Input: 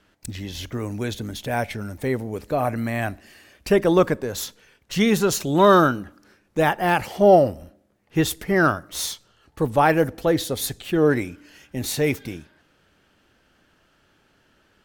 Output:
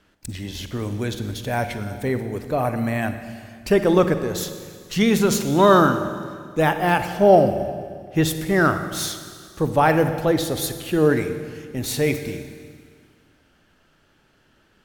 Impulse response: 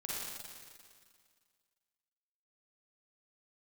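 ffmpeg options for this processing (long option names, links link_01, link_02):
-filter_complex "[0:a]asplit=2[link_01][link_02];[1:a]atrim=start_sample=2205,lowshelf=frequency=230:gain=7.5[link_03];[link_02][link_03]afir=irnorm=-1:irlink=0,volume=-9dB[link_04];[link_01][link_04]amix=inputs=2:normalize=0,volume=-1.5dB"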